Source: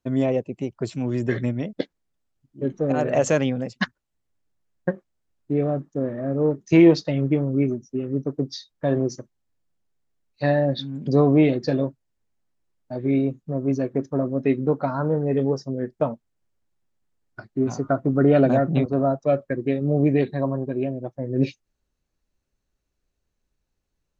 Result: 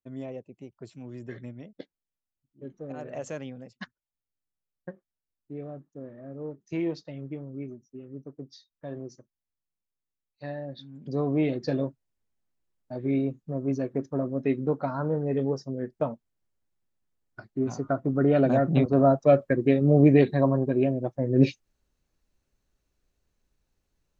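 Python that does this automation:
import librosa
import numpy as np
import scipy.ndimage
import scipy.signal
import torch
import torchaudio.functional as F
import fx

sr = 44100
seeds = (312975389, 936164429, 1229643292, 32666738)

y = fx.gain(x, sr, db=fx.line((10.71, -16.0), (11.71, -5.0), (18.38, -5.0), (19.07, 2.0)))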